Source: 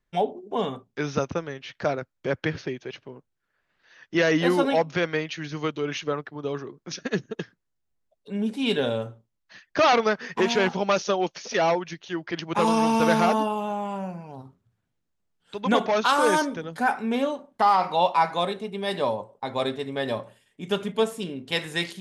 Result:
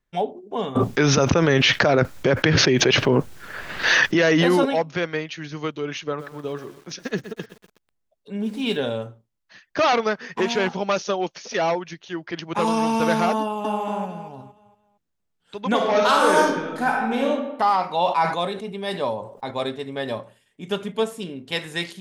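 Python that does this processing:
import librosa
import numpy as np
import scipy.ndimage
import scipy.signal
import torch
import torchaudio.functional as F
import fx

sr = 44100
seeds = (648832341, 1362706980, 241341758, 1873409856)

y = fx.env_flatten(x, sr, amount_pct=100, at=(0.75, 4.64), fade=0.02)
y = fx.echo_crushed(y, sr, ms=123, feedback_pct=55, bits=7, wet_db=-12.0, at=(6.06, 8.77))
y = fx.echo_throw(y, sr, start_s=13.41, length_s=0.41, ms=230, feedback_pct=35, wet_db=0.0)
y = fx.reverb_throw(y, sr, start_s=15.75, length_s=1.55, rt60_s=1.0, drr_db=-1.5)
y = fx.sustainer(y, sr, db_per_s=86.0, at=(17.91, 19.51))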